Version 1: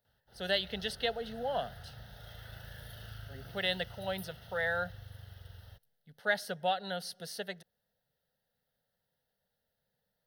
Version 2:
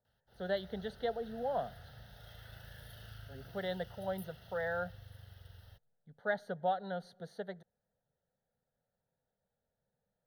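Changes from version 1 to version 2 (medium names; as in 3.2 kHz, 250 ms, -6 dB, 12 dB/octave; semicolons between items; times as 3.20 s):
speech: add boxcar filter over 17 samples; background -4.0 dB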